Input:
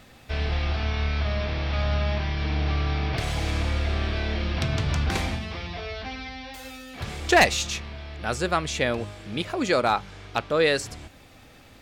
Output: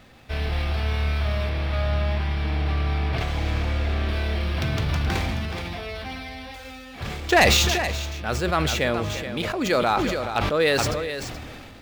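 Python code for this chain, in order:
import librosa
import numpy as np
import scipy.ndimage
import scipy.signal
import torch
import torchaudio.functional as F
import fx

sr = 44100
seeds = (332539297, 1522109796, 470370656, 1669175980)

y = scipy.signal.medfilt(x, 5)
y = fx.high_shelf(y, sr, hz=6300.0, db=-8.0, at=(1.49, 4.09))
y = fx.echo_multitap(y, sr, ms=(347, 426), db=(-19.5, -10.5))
y = fx.sustainer(y, sr, db_per_s=24.0)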